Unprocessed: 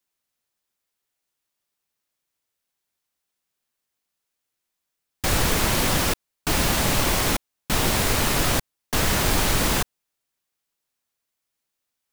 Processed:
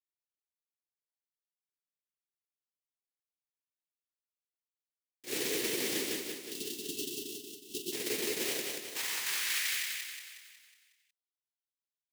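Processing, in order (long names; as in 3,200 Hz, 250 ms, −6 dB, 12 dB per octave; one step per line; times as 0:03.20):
gain on a spectral selection 0:06.15–0:07.92, 450–2,600 Hz −25 dB
noise gate −19 dBFS, range −23 dB
flat-topped bell 900 Hz −15 dB
brickwall limiter −16.5 dBFS, peak gain reduction 6 dB
high-pass filter sweep 400 Hz → 3,300 Hz, 0:08.26–0:10.23
repeating echo 183 ms, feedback 51%, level −3 dB
level −4 dB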